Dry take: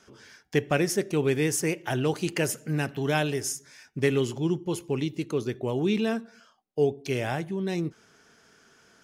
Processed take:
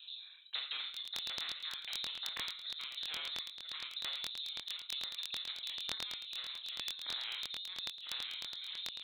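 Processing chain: local Wiener filter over 25 samples; bass shelf 75 Hz +11 dB; saturation -20.5 dBFS, distortion -15 dB; shuffle delay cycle 1340 ms, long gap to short 3:1, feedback 42%, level -13 dB; compression 8:1, threshold -37 dBFS, peak gain reduction 14 dB; rotary cabinet horn 1.2 Hz; reverb removal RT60 1.6 s; reverberation RT60 0.35 s, pre-delay 24 ms, DRR 2.5 dB; frequency inversion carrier 3.9 kHz; differentiator; crackling interface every 0.11 s, samples 1024, repeat, from 0.92 s; spectrum-flattening compressor 2:1; trim +13 dB

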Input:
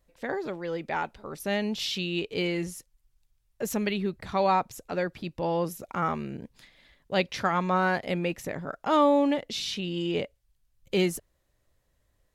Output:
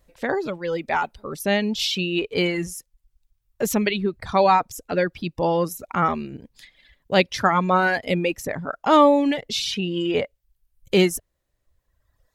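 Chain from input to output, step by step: reverb removal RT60 1.4 s; trim +8 dB

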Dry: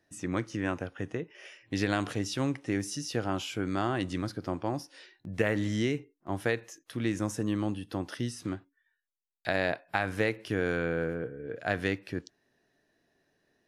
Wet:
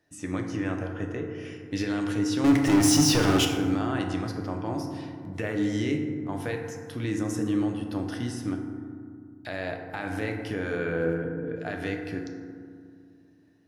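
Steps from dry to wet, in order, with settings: peak limiter -20 dBFS, peak gain reduction 10 dB; 2.44–3.45 s: waveshaping leveller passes 5; FDN reverb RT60 2.1 s, low-frequency decay 1.5×, high-frequency decay 0.35×, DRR 2.5 dB

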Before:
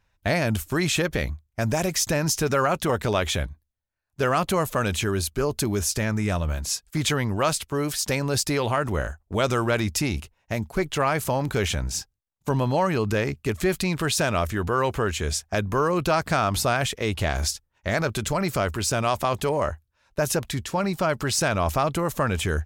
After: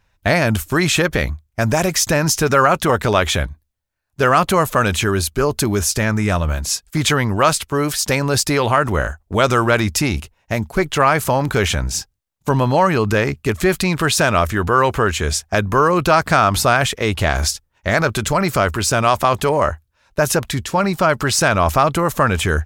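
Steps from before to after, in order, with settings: dynamic bell 1.3 kHz, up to +4 dB, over -38 dBFS, Q 1.1; trim +6.5 dB

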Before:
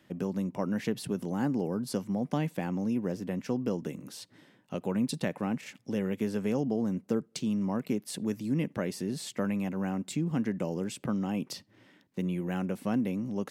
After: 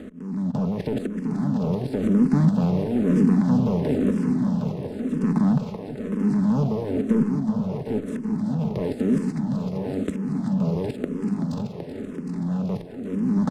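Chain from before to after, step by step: spectral levelling over time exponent 0.4; tilt EQ -4 dB/octave; comb 4.7 ms, depth 39%; waveshaping leveller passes 2; level held to a coarse grid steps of 17 dB; slow attack 772 ms; on a send: multi-head delay 381 ms, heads first and second, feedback 58%, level -9 dB; on the sum: barber-pole phaser -1 Hz

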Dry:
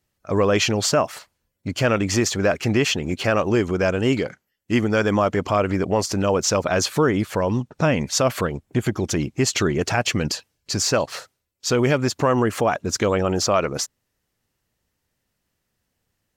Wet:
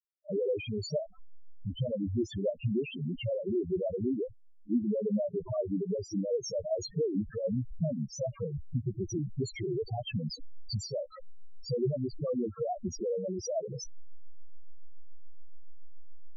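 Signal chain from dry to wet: send-on-delta sampling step -29.5 dBFS; compression 5:1, threshold -25 dBFS, peak gain reduction 10.5 dB; reverse echo 34 ms -20 dB; loudest bins only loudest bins 2; rotary cabinet horn 8 Hz; trim +4 dB

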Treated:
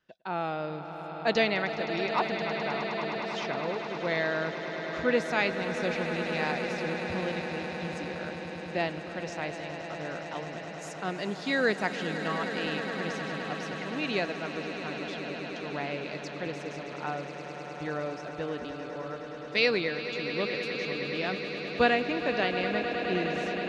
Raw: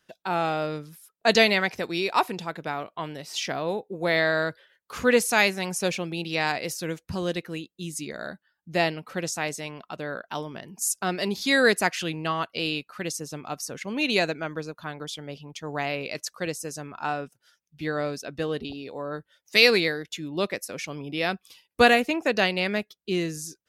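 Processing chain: distance through air 160 m; echo with a slow build-up 104 ms, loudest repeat 8, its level -13 dB; trim -5.5 dB

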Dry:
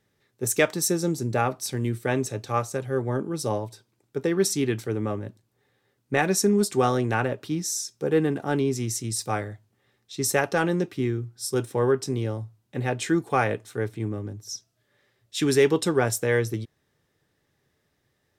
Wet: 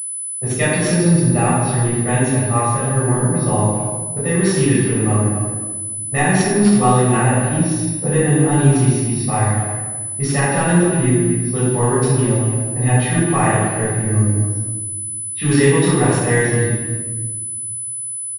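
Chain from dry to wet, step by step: gate -38 dBFS, range -11 dB; level-controlled noise filter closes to 680 Hz, open at -20 dBFS; comb 1.1 ms, depth 47%; in parallel at +2.5 dB: peak limiter -18 dBFS, peak gain reduction 10.5 dB; on the sum: speakerphone echo 260 ms, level -10 dB; simulated room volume 940 m³, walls mixed, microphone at 6.4 m; class-D stage that switches slowly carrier 10 kHz; trim -9.5 dB

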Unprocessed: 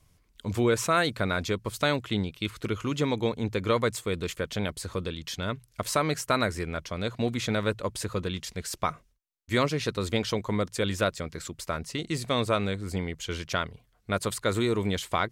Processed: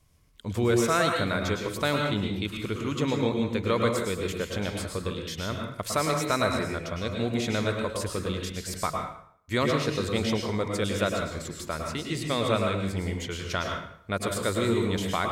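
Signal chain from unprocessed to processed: plate-style reverb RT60 0.63 s, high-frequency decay 0.8×, pre-delay 95 ms, DRR 1.5 dB; trim -1.5 dB

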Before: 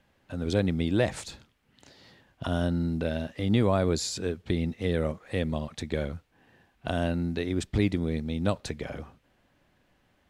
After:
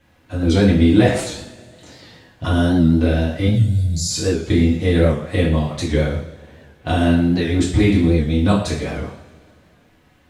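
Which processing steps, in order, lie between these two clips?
3.47–4.10 s: Chebyshev band-stop 150–5100 Hz, order 3; two-slope reverb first 0.54 s, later 2.3 s, from -21 dB, DRR -8 dB; warped record 78 rpm, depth 100 cents; trim +2.5 dB

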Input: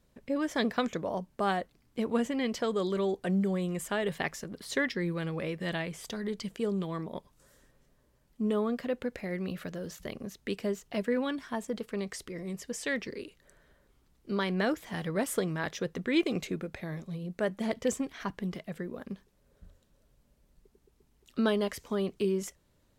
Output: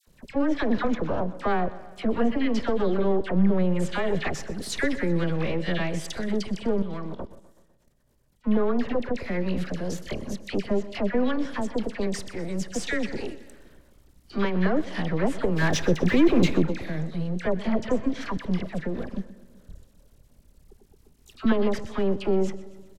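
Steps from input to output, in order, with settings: partial rectifier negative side -12 dB; in parallel at -1.5 dB: peak limiter -26 dBFS, peak gain reduction 10.5 dB; on the sum: low-pass that closes with the level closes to 2 kHz, closed at -24.5 dBFS; treble shelf 3.8 kHz +7 dB; on a send at -21 dB: high-pass 190 Hz 12 dB/octave + reverberation RT60 1.2 s, pre-delay 101 ms; 15.56–16.61 s: on the sum: waveshaping leveller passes 2; bass shelf 380 Hz +7 dB; phase dispersion lows, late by 70 ms, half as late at 1.2 kHz; 6.82–8.44 s: level held to a coarse grid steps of 17 dB; feedback delay 125 ms, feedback 59%, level -18 dB; trim +1.5 dB

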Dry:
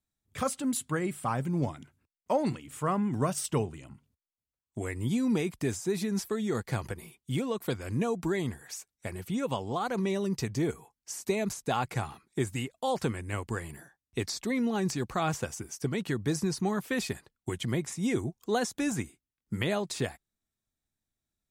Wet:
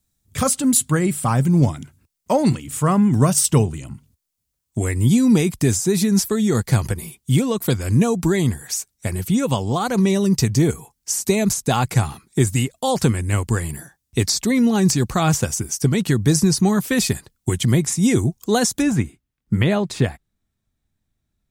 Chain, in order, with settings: tone controls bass +8 dB, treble +9 dB, from 18.81 s treble -5 dB; trim +8.5 dB

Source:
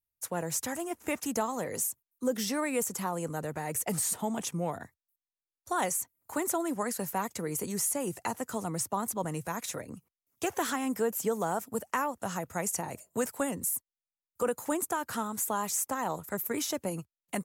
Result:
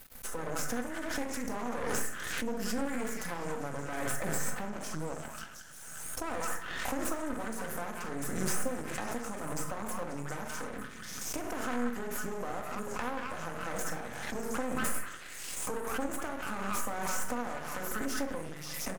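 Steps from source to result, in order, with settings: tracing distortion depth 0.032 ms; fifteen-band graphic EQ 250 Hz +6 dB, 630 Hz +7 dB, 1.6 kHz +8 dB, 4 kHz -10 dB; speed mistake 48 kHz file played as 44.1 kHz; on a send: repeats whose band climbs or falls 180 ms, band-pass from 1.5 kHz, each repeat 0.7 oct, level -1 dB; on the sum: compression 3:1, threshold -39 dBFS, peak gain reduction 15 dB; doubling 41 ms -13 dB; simulated room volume 770 m³, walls furnished, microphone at 2 m; half-wave rectifier; hum notches 50/100/150 Hz; swell ahead of each attack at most 30 dB/s; trim +1.5 dB

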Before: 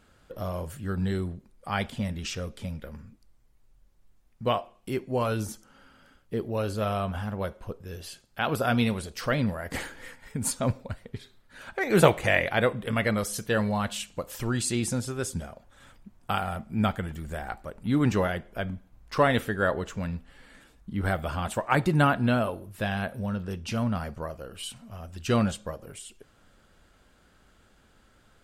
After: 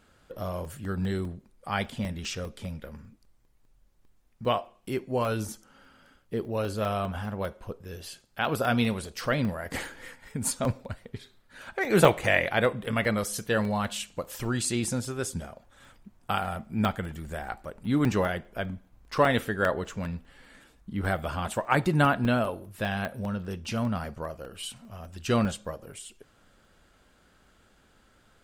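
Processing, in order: bass shelf 140 Hz -3 dB; crackling interface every 0.20 s, samples 64, zero, from 0.65 s

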